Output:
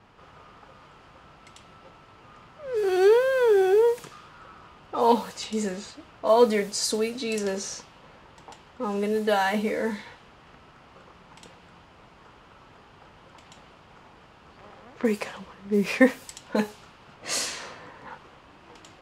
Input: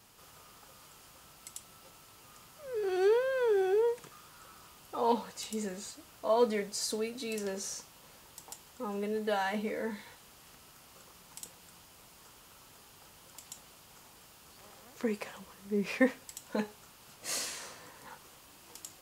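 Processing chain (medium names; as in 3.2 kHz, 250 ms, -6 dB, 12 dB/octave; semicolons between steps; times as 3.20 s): level-controlled noise filter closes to 1.9 kHz, open at -29.5 dBFS; trim +8.5 dB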